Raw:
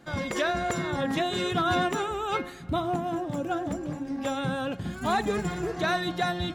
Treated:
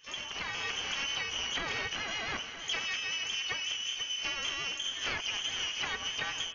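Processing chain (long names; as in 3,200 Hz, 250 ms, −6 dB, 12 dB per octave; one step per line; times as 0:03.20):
phase distortion by the signal itself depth 0.65 ms
echo with a time of its own for lows and highs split 320 Hz, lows 84 ms, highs 486 ms, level −13.5 dB
downward compressor 12 to 1, threshold −28 dBFS, peak gain reduction 7.5 dB
voice inversion scrambler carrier 3,300 Hz
pitch-shifted copies added +12 semitones −9 dB
automatic gain control gain up to 4.5 dB
level −7 dB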